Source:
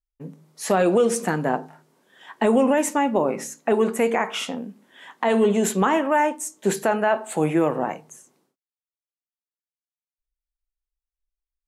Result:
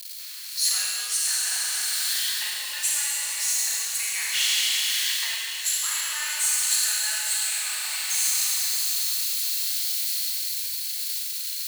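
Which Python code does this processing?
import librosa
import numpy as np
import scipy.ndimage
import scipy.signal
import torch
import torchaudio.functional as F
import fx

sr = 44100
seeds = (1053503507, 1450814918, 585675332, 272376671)

p1 = x + 0.5 * 10.0 ** (-30.0 / 20.0) * np.sign(x)
p2 = fx.peak_eq(p1, sr, hz=4300.0, db=13.5, octaves=0.22)
p3 = fx.rev_schroeder(p2, sr, rt60_s=3.4, comb_ms=31, drr_db=-5.5)
p4 = fx.rider(p3, sr, range_db=5, speed_s=0.5)
p5 = scipy.signal.sosfilt(scipy.signal.bessel(4, 2900.0, 'highpass', norm='mag', fs=sr, output='sos'), p4)
p6 = fx.high_shelf(p5, sr, hz=8200.0, db=5.0)
y = p6 + fx.echo_single(p6, sr, ms=628, db=-12.0, dry=0)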